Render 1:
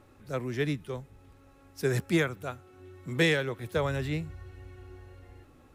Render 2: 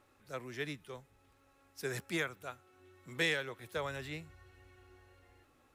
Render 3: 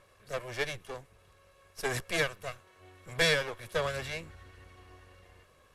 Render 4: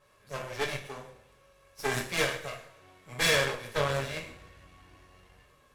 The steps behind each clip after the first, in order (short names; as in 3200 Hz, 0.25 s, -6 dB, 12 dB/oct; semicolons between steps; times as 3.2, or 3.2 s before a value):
low shelf 460 Hz -11.5 dB; gain -4.5 dB
minimum comb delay 1.8 ms; Chebyshev low-pass 12000 Hz, order 3; gain +8 dB
half-wave gain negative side -7 dB; two-slope reverb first 0.54 s, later 1.7 s, DRR -2.5 dB; added harmonics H 6 -17 dB, 7 -29 dB, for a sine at -12.5 dBFS